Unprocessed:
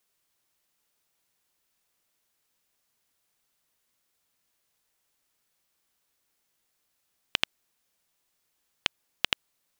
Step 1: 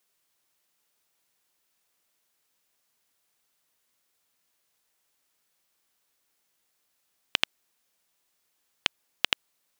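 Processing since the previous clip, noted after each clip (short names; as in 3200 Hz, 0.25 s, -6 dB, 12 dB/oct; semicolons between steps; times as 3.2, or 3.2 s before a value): low shelf 150 Hz -7 dB; gain +1.5 dB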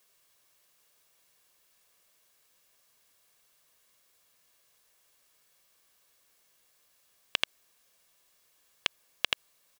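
comb 1.8 ms, depth 33%; limiter -11 dBFS, peak gain reduction 10 dB; gain +6 dB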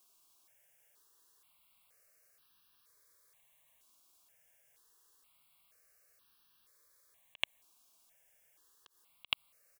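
auto swell 0.116 s; step phaser 2.1 Hz 510–2100 Hz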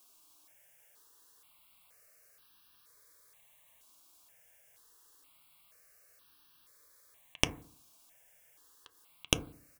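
tracing distortion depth 0.086 ms; FDN reverb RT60 0.47 s, low-frequency decay 1.3×, high-frequency decay 0.3×, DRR 8.5 dB; gain +5.5 dB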